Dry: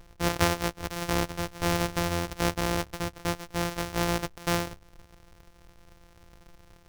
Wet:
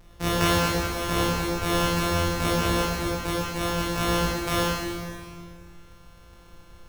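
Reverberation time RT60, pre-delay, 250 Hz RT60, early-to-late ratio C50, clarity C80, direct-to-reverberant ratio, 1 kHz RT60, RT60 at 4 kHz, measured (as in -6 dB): 2.0 s, 14 ms, 2.2 s, -2.0 dB, 0.0 dB, -6.0 dB, 1.9 s, 1.9 s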